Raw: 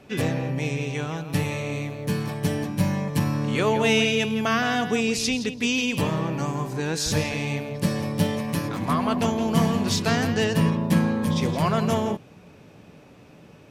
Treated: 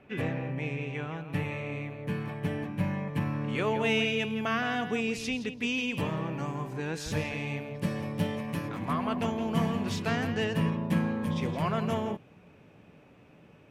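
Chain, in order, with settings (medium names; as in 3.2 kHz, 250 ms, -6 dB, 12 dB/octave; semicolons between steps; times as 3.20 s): resonant high shelf 3.5 kHz -12 dB, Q 1.5, from 3.49 s -6 dB; trim -7 dB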